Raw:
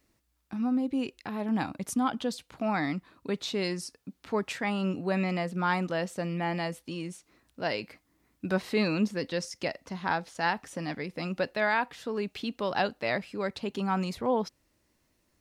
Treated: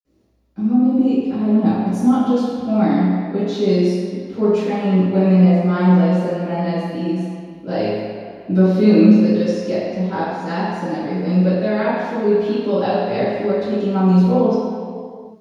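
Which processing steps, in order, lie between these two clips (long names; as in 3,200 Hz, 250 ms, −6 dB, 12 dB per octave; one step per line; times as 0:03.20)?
parametric band 1,400 Hz −9.5 dB 2 octaves
convolution reverb, pre-delay 47 ms, DRR −60 dB
level −5.5 dB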